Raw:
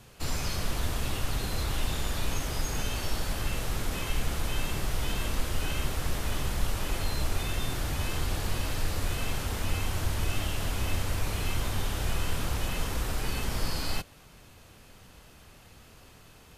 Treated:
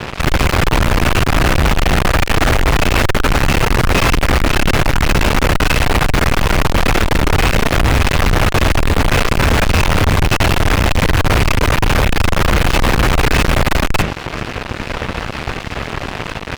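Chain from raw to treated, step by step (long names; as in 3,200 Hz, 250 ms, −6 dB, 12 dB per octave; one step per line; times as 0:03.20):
Butterworth low-pass 2,700 Hz 48 dB per octave
mains-hum notches 50/100/150/200 Hz
fuzz pedal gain 52 dB, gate −52 dBFS
level +3 dB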